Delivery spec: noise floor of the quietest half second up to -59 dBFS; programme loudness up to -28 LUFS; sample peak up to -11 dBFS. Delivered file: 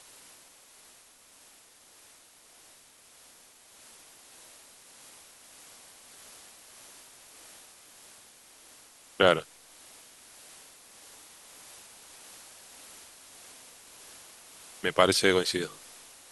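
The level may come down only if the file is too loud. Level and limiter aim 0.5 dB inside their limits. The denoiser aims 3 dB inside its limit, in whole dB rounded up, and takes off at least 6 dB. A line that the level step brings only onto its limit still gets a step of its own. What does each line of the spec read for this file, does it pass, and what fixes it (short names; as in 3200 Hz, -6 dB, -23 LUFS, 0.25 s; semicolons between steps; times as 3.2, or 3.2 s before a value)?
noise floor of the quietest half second -57 dBFS: fail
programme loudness -25.5 LUFS: fail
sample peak -5.0 dBFS: fail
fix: gain -3 dB; limiter -11.5 dBFS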